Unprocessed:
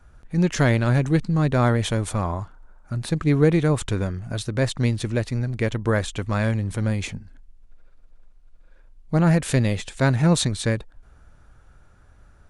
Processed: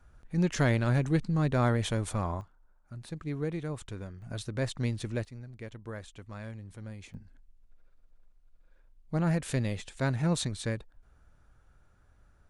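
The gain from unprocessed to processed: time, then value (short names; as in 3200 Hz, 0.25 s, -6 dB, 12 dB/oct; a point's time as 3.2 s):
-7 dB
from 2.41 s -16 dB
from 4.22 s -9.5 dB
from 5.25 s -19.5 dB
from 7.14 s -10 dB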